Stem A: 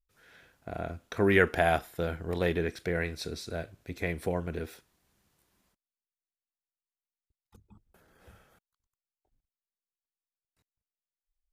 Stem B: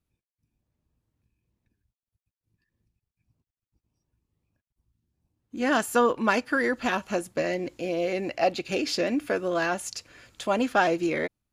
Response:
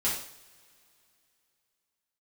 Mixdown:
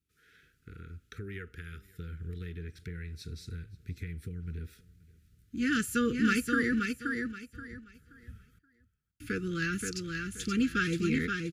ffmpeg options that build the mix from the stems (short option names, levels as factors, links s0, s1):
-filter_complex "[0:a]acompressor=threshold=0.01:ratio=3,volume=0.596,asplit=2[s0][s1];[s1]volume=0.0708[s2];[1:a]volume=0.668,asplit=3[s3][s4][s5];[s3]atrim=end=6.79,asetpts=PTS-STARTPTS,afade=t=out:st=6.786:d=0.004:c=hsin[s6];[s4]atrim=start=6.79:end=9.2,asetpts=PTS-STARTPTS,volume=0[s7];[s5]atrim=start=9.2,asetpts=PTS-STARTPTS,afade=t=in:d=0.004:c=hsin[s8];[s6][s7][s8]concat=n=3:v=0:a=1,asplit=2[s9][s10];[s10]volume=0.596[s11];[s2][s11]amix=inputs=2:normalize=0,aecho=0:1:527|1054|1581|2108:1|0.25|0.0625|0.0156[s12];[s0][s9][s12]amix=inputs=3:normalize=0,highpass=45,asubboost=boost=8:cutoff=140,asuperstop=centerf=770:order=20:qfactor=1"